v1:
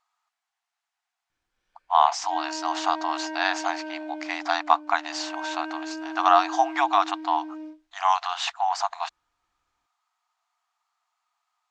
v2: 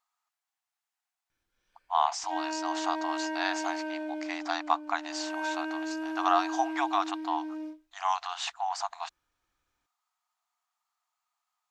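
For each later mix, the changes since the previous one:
speech −7.5 dB
master: remove high-frequency loss of the air 59 metres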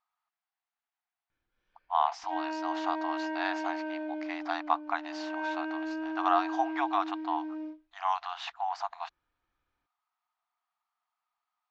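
master: add high-frequency loss of the air 220 metres

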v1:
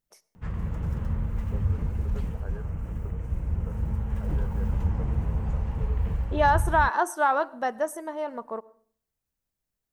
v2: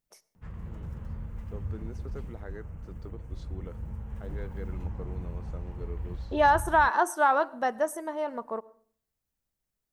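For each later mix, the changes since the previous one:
first voice: remove linear-phase brick-wall band-pass 380–1,700 Hz
background −9.5 dB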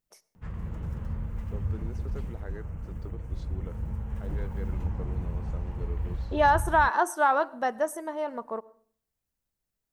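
background +4.5 dB

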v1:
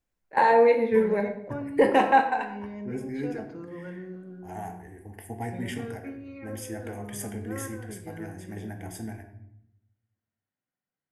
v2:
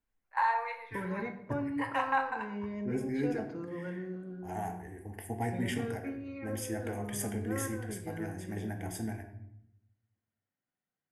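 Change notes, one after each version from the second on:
first voice: add four-pole ladder high-pass 970 Hz, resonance 60%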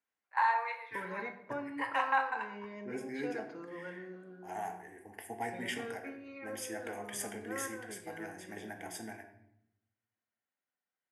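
master: add meter weighting curve A

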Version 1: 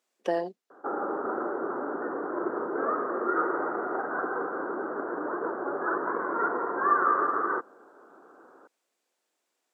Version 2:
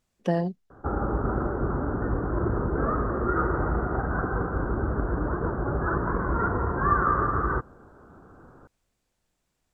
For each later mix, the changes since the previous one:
master: remove high-pass filter 320 Hz 24 dB per octave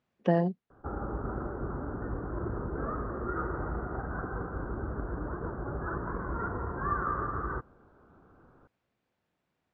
speech: add band-pass filter 110–2,800 Hz
background −8.5 dB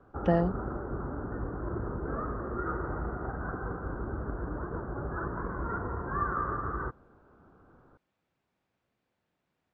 background: entry −0.70 s

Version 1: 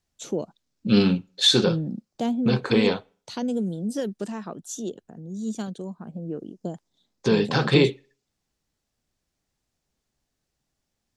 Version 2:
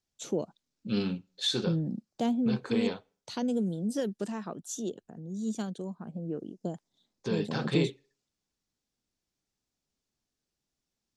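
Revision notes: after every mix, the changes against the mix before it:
first voice −3.0 dB
second voice −11.5 dB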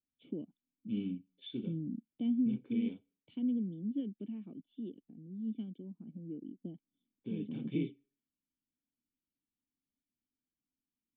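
master: add formant resonators in series i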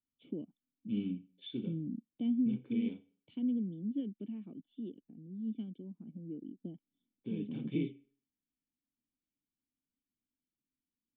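second voice: send +11.0 dB

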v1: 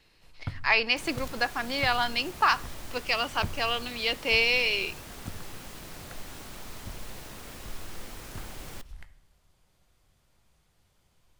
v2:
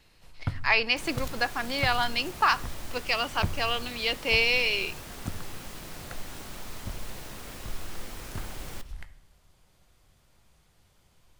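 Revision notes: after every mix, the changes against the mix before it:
first sound +4.5 dB
second sound: send +6.5 dB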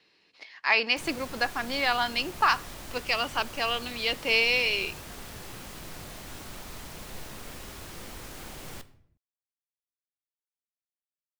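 first sound: muted

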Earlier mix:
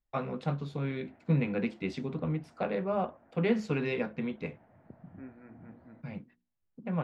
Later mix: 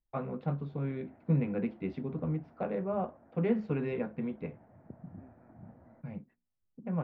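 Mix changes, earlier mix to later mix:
second voice −8.5 dB
background +4.0 dB
master: add head-to-tape spacing loss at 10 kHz 41 dB

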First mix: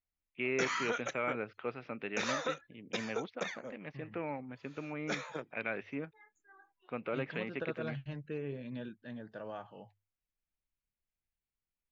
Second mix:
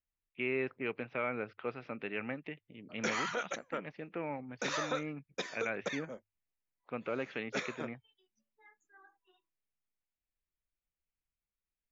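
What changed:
second voice: muted
background: entry +2.45 s

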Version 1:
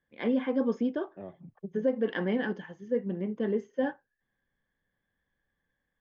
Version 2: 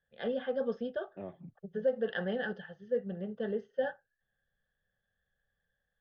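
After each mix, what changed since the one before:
first voice: add phaser with its sweep stopped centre 1,500 Hz, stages 8
second voice: remove low-pass filter 2,200 Hz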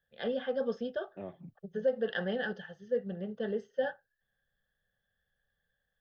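master: remove high-frequency loss of the air 170 metres

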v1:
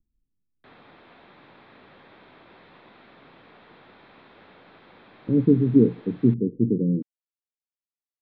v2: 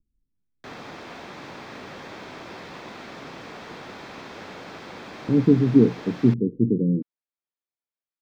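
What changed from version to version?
background +11.5 dB
master: remove elliptic low-pass filter 3,900 Hz, stop band 70 dB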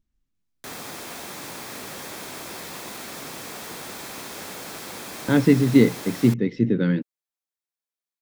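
speech: remove Butterworth low-pass 500 Hz 72 dB per octave
master: remove high-frequency loss of the air 210 metres

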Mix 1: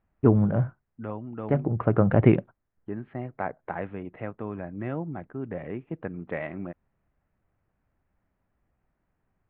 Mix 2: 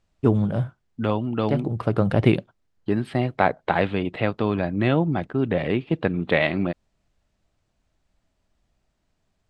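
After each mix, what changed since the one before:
second voice +11.5 dB
master: remove inverse Chebyshev low-pass filter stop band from 8,200 Hz, stop band 70 dB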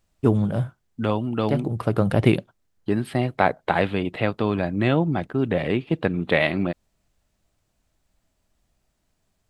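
master: remove high-frequency loss of the air 67 metres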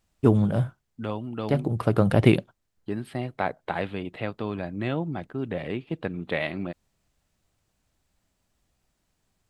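second voice −8.0 dB

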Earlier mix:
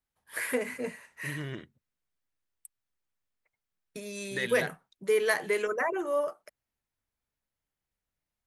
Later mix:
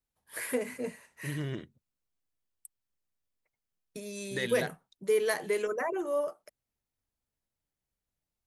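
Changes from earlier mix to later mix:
second voice +3.0 dB
master: add parametric band 1,700 Hz −6 dB 1.9 octaves

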